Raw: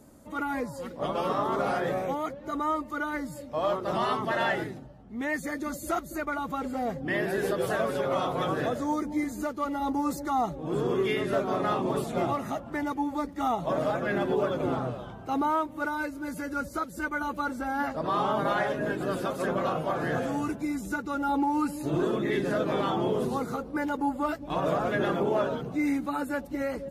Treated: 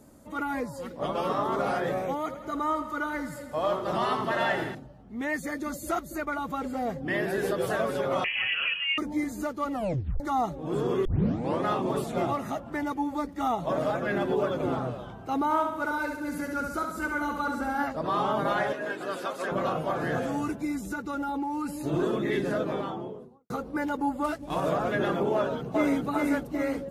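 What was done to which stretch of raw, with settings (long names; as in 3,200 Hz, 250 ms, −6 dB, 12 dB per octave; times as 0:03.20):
0:02.19–0:04.75: feedback echo with a high-pass in the loop 82 ms, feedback 73%, level −11 dB
0:08.24–0:08.98: voice inversion scrambler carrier 3,100 Hz
0:09.72: tape stop 0.48 s
0:11.05: tape start 0.58 s
0:15.44–0:17.84: repeating echo 68 ms, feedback 53%, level −5 dB
0:18.73–0:19.52: meter weighting curve A
0:20.86–0:21.75: downward compressor, threshold −27 dBFS
0:22.35–0:23.50: fade out and dull
0:24.24–0:24.69: variable-slope delta modulation 64 kbit/s
0:25.34–0:26.03: delay throw 400 ms, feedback 50%, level −1.5 dB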